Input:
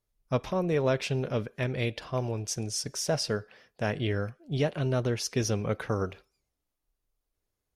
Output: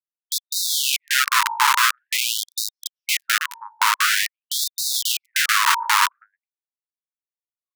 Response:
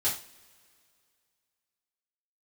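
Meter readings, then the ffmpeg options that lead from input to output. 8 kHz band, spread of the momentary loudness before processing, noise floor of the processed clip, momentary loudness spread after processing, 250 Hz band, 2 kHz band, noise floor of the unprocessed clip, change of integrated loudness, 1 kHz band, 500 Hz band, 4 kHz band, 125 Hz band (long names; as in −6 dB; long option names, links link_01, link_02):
+14.5 dB, 5 LU, below −85 dBFS, 9 LU, below −40 dB, +18.0 dB, −84 dBFS, +11.0 dB, +17.5 dB, below −40 dB, +16.5 dB, below −40 dB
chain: -filter_complex "[0:a]equalizer=frequency=2200:width_type=o:width=2.3:gain=-6.5,acrossover=split=390[link_01][link_02];[link_02]acrusher=bits=3:mix=0:aa=0.000001[link_03];[link_01][link_03]amix=inputs=2:normalize=0,asoftclip=type=tanh:threshold=-26dB,asplit=2[link_04][link_05];[link_05]adelay=314.9,volume=-11dB,highshelf=frequency=4000:gain=-7.08[link_06];[link_04][link_06]amix=inputs=2:normalize=0,aeval=exprs='(mod(39.8*val(0)+1,2)-1)/39.8':channel_layout=same,bandreject=frequency=54.13:width_type=h:width=4,bandreject=frequency=108.26:width_type=h:width=4,bandreject=frequency=162.39:width_type=h:width=4,bandreject=frequency=216.52:width_type=h:width=4,bandreject=frequency=270.65:width_type=h:width=4,bandreject=frequency=324.78:width_type=h:width=4,bandreject=frequency=378.91:width_type=h:width=4,bandreject=frequency=433.04:width_type=h:width=4,bandreject=frequency=487.17:width_type=h:width=4,bandreject=frequency=541.3:width_type=h:width=4,bandreject=frequency=595.43:width_type=h:width=4,bandreject=frequency=649.56:width_type=h:width=4,bandreject=frequency=703.69:width_type=h:width=4,bandreject=frequency=757.82:width_type=h:width=4,bandreject=frequency=811.95:width_type=h:width=4,bandreject=frequency=866.08:width_type=h:width=4,bandreject=frequency=920.21:width_type=h:width=4,bandreject=frequency=974.34:width_type=h:width=4,acompressor=threshold=-40dB:ratio=6,lowshelf=frequency=670:width_type=q:width=3:gain=-8,alimiter=level_in=36dB:limit=-1dB:release=50:level=0:latency=1,afftfilt=real='re*gte(b*sr/1024,830*pow(3700/830,0.5+0.5*sin(2*PI*0.47*pts/sr)))':imag='im*gte(b*sr/1024,830*pow(3700/830,0.5+0.5*sin(2*PI*0.47*pts/sr)))':win_size=1024:overlap=0.75,volume=-2.5dB"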